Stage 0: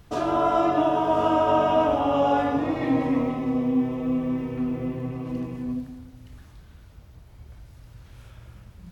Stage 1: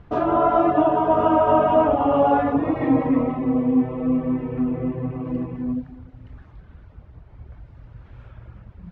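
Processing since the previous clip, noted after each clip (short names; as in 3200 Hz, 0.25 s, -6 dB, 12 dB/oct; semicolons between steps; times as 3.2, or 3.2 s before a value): reverb removal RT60 0.5 s; LPF 1800 Hz 12 dB/oct; gain +5 dB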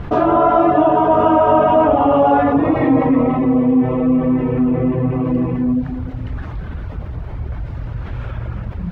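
fast leveller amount 50%; gain +3 dB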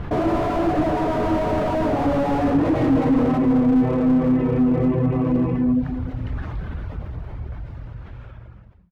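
ending faded out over 2.35 s; slew limiter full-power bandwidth 72 Hz; gain -2 dB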